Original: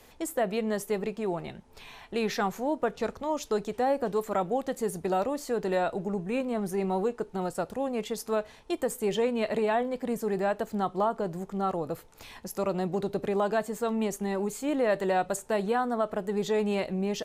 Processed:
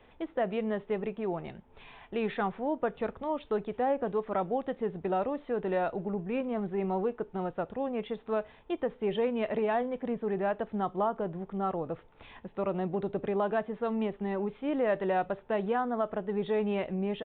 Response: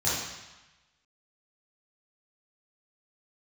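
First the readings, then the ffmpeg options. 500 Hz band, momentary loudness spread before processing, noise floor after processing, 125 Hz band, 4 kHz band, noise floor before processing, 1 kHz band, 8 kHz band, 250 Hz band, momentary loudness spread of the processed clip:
-2.0 dB, 6 LU, -58 dBFS, -2.0 dB, -7.5 dB, -54 dBFS, -2.5 dB, under -40 dB, -2.0 dB, 6 LU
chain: -af "aemphasis=mode=reproduction:type=50fm,aresample=8000,aresample=44100,volume=-2.5dB"

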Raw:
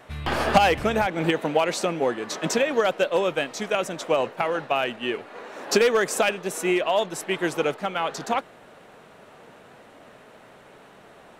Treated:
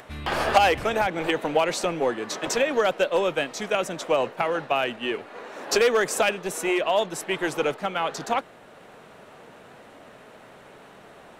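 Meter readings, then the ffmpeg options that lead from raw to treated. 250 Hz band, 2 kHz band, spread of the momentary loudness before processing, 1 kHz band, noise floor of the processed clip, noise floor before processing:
-2.5 dB, 0.0 dB, 8 LU, 0.0 dB, -49 dBFS, -50 dBFS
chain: -filter_complex "[0:a]acrossover=split=300[a][b];[a]aeval=exprs='0.0251*(abs(mod(val(0)/0.0251+3,4)-2)-1)':c=same[c];[c][b]amix=inputs=2:normalize=0,acompressor=mode=upward:threshold=-43dB:ratio=2.5"

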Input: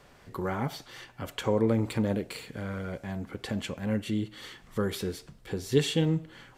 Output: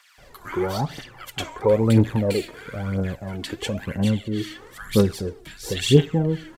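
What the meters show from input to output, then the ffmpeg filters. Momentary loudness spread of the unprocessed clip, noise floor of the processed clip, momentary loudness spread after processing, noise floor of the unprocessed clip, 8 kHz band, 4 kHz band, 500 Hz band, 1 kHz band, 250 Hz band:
13 LU, -50 dBFS, 17 LU, -57 dBFS, +7.5 dB, +7.0 dB, +8.0 dB, +6.0 dB, +7.0 dB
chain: -filter_complex "[0:a]acrossover=split=1300[a][b];[a]adelay=180[c];[c][b]amix=inputs=2:normalize=0,aphaser=in_gain=1:out_gain=1:delay=3.3:decay=0.6:speed=1:type=triangular,volume=5.5dB"

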